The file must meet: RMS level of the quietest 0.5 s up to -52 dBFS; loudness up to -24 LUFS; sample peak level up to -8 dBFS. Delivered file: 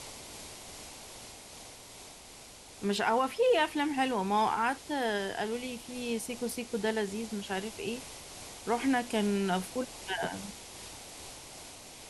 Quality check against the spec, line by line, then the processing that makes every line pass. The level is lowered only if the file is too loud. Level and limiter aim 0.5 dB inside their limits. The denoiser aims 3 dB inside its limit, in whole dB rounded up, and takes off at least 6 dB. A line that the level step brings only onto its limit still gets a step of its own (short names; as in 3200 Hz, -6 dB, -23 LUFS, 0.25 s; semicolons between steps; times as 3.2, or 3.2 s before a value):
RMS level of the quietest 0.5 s -51 dBFS: fail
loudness -32.0 LUFS: OK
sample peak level -16.0 dBFS: OK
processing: denoiser 6 dB, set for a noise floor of -51 dBFS